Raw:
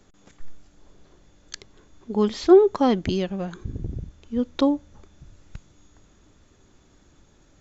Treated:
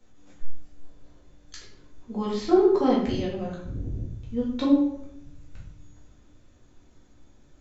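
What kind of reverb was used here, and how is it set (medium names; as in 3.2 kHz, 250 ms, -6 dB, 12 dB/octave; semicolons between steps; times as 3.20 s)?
simulated room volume 160 m³, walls mixed, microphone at 2 m; trim -11 dB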